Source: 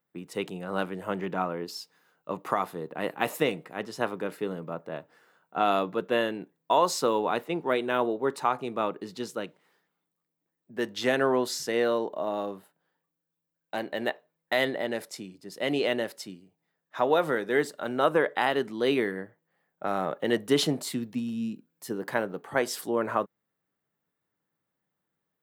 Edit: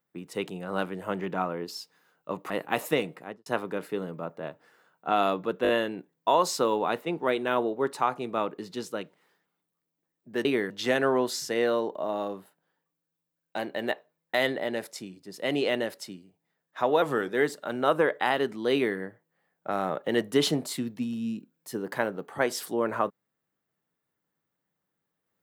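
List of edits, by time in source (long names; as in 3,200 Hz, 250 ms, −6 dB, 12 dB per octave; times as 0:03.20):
0:02.50–0:02.99: remove
0:03.66–0:03.95: fade out and dull
0:06.12: stutter 0.02 s, 4 plays
0:17.20–0:17.45: play speed 92%
0:18.89–0:19.14: duplicate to 0:10.88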